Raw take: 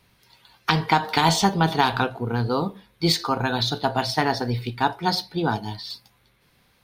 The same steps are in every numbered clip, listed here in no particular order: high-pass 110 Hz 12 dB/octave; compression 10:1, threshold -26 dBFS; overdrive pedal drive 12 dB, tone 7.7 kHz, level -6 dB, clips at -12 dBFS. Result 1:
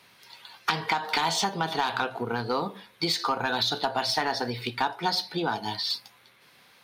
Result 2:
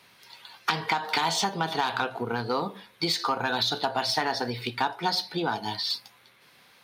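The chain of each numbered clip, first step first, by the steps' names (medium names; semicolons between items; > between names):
compression > high-pass > overdrive pedal; compression > overdrive pedal > high-pass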